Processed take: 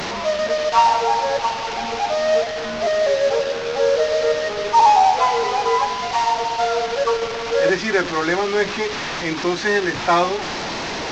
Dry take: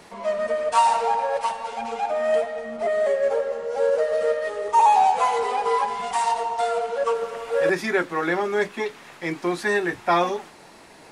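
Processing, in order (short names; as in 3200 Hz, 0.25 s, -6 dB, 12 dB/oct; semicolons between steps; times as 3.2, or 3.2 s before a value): delta modulation 32 kbps, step -23.5 dBFS; gain +3.5 dB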